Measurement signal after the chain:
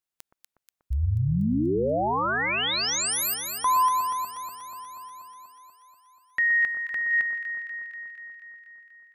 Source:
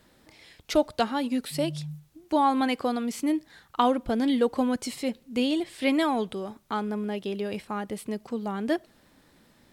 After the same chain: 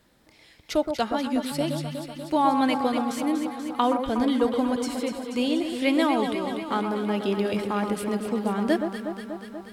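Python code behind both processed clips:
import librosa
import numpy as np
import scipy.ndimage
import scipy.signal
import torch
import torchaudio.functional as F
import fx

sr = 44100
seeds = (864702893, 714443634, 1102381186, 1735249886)

y = fx.rider(x, sr, range_db=10, speed_s=2.0)
y = fx.echo_alternate(y, sr, ms=121, hz=1400.0, feedback_pct=83, wet_db=-6)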